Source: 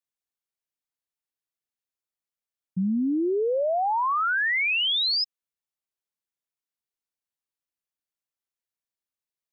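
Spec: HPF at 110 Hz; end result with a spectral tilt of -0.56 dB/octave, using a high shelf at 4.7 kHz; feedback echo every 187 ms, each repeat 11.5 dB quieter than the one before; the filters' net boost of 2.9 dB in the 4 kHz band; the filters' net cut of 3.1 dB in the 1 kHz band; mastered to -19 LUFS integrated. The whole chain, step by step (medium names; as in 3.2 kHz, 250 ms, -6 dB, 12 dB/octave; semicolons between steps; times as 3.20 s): high-pass 110 Hz; peaking EQ 1 kHz -4 dB; peaking EQ 4 kHz +7.5 dB; treble shelf 4.7 kHz -8 dB; feedback delay 187 ms, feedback 27%, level -11.5 dB; trim +3.5 dB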